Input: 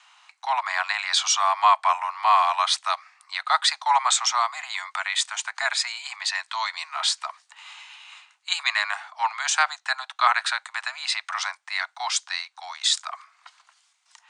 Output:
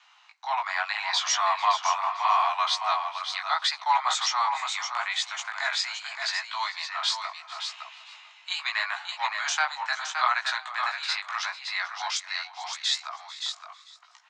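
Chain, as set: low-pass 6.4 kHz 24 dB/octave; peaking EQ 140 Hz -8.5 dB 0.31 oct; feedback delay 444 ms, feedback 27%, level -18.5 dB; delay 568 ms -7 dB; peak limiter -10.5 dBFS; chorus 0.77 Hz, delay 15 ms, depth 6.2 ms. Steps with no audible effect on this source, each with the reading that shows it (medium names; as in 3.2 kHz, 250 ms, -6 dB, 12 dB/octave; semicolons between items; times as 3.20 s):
peaking EQ 140 Hz: input has nothing below 540 Hz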